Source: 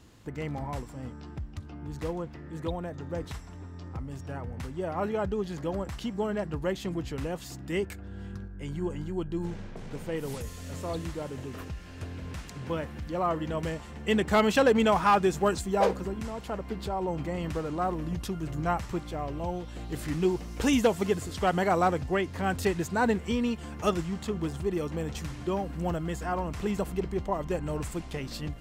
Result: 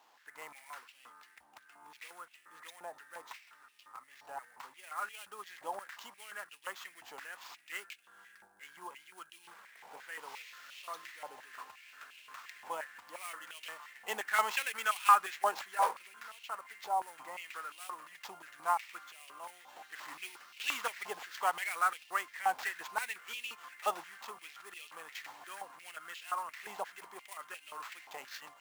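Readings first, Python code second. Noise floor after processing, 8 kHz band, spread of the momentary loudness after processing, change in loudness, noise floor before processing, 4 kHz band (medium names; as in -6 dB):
-64 dBFS, -3.5 dB, 19 LU, -7.5 dB, -44 dBFS, -5.0 dB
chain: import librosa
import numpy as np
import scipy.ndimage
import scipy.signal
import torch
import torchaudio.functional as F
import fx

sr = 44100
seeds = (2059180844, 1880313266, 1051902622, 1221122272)

y = fx.sample_hold(x, sr, seeds[0], rate_hz=10000.0, jitter_pct=20)
y = fx.filter_held_highpass(y, sr, hz=5.7, low_hz=830.0, high_hz=2700.0)
y = F.gain(torch.from_numpy(y), -7.5).numpy()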